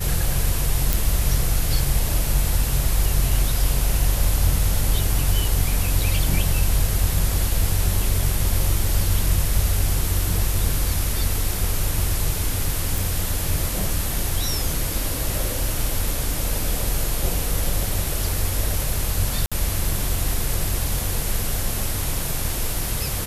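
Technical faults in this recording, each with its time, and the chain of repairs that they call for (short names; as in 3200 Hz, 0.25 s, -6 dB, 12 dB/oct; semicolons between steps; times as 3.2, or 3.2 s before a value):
0.93 pop
12.98 pop
19.46–19.52 gap 56 ms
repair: de-click; interpolate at 19.46, 56 ms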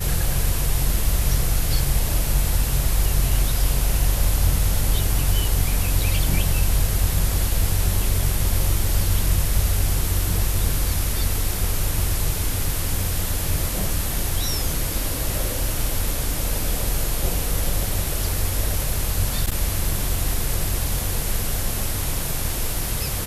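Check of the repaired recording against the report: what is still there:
none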